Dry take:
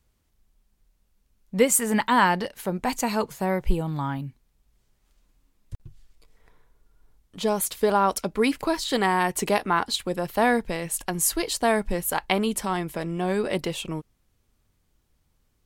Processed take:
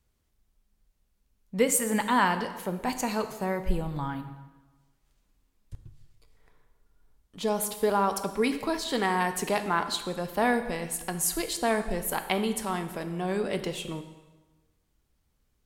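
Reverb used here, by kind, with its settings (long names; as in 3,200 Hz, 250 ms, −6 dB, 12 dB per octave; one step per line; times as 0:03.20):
dense smooth reverb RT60 1.2 s, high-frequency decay 0.85×, DRR 8 dB
level −4.5 dB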